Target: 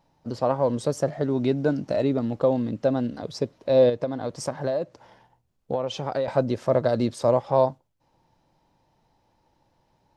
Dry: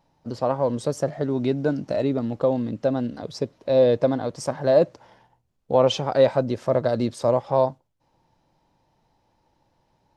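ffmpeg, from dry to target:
-filter_complex "[0:a]asettb=1/sr,asplit=3[s0][s1][s2];[s0]atrim=end=3.894[s3];[s1]atrim=start=3.89:end=6.28,asetpts=PTS-STARTPTS,afade=t=in:d=0.004:c=qsin,afade=t=out:st=2.386:d=0.004:c=qsin,acompressor=threshold=0.0708:ratio=12[s4];[s2]atrim=start=6.276[s5];[s3][s4]acrossfade=d=0.004:c1=hsin:c2=qsin[s6];[s6][s5]acrossfade=d=0.004:c1=qsin:c2=hsin"

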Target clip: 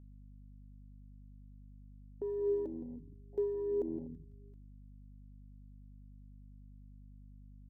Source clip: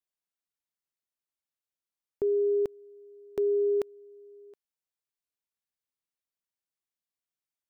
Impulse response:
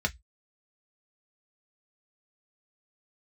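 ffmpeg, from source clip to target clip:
-filter_complex "[0:a]asplit=2[s0][s1];[s1]asplit=4[s2][s3][s4][s5];[s2]adelay=166,afreqshift=-82,volume=0.141[s6];[s3]adelay=332,afreqshift=-164,volume=0.0708[s7];[s4]adelay=498,afreqshift=-246,volume=0.0355[s8];[s5]adelay=664,afreqshift=-328,volume=0.0176[s9];[s6][s7][s8][s9]amix=inputs=4:normalize=0[s10];[s0][s10]amix=inputs=2:normalize=0,afwtdn=0.0158,alimiter=level_in=1.68:limit=0.0631:level=0:latency=1:release=17,volume=0.596,aphaser=in_gain=1:out_gain=1:delay=4.2:decay=0.42:speed=0.51:type=sinusoidal,aeval=exprs='val(0)+0.00282*(sin(2*PI*50*n/s)+sin(2*PI*2*50*n/s)/2+sin(2*PI*3*50*n/s)/3+sin(2*PI*4*50*n/s)/4+sin(2*PI*5*50*n/s)/5)':c=same,volume=0.794"

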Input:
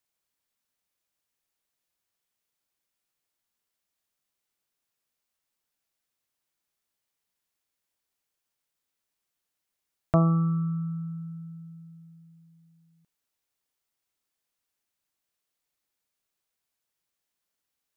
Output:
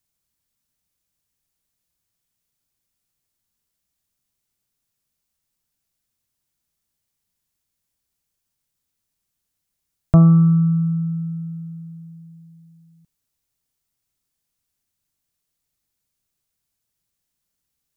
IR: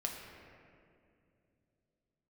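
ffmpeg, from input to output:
-af "bass=f=250:g=14,treble=f=4000:g=6"

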